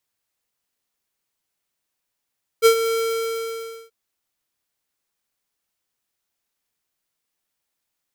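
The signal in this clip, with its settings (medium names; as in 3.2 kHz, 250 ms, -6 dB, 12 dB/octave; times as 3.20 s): ADSR square 454 Hz, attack 37 ms, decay 87 ms, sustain -11 dB, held 0.31 s, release 972 ms -10.5 dBFS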